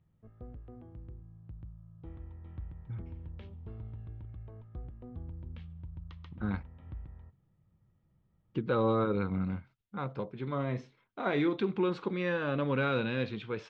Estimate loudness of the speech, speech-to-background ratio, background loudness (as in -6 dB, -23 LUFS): -32.5 LUFS, 15.0 dB, -47.5 LUFS